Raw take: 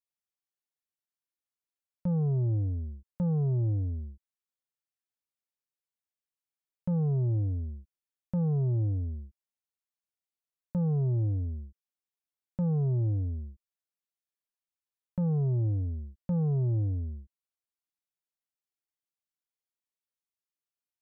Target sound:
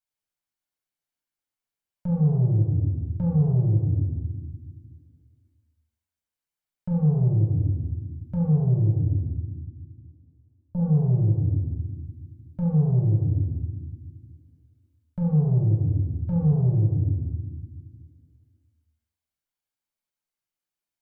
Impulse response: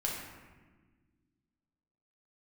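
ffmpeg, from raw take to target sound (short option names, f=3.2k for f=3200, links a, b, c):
-filter_complex "[0:a]asettb=1/sr,asplit=3[a][b][c];[a]atrim=end=8.574[d];[b]atrim=start=8.57:end=10.8,asetpts=PTS-STARTPTS,afade=t=in:d=0.004:c=qsin,afade=t=out:st=2.226:d=0.004:c=qsin,lowpass=f=1k:w=0.5412,lowpass=f=1k:w=1.3066[e];[c]atrim=start=10.796[f];[d][e]acrossfade=d=0.004:c1=hsin:c2=qsin[g];[g][f]acrossfade=d=0.004:c1=qsin:c2=hsin[h];[1:a]atrim=start_sample=2205[i];[h][i]afir=irnorm=-1:irlink=0"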